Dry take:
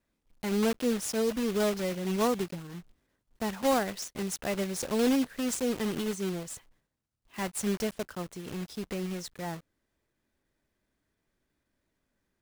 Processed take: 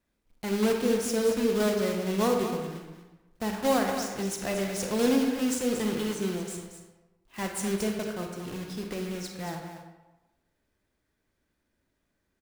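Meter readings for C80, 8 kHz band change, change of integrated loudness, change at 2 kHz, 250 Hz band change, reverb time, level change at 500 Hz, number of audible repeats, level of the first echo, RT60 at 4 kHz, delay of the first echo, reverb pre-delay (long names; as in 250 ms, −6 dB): 4.5 dB, +1.5 dB, +2.5 dB, +2.5 dB, +2.0 dB, 1.1 s, +3.0 dB, 1, −9.5 dB, 0.65 s, 230 ms, 29 ms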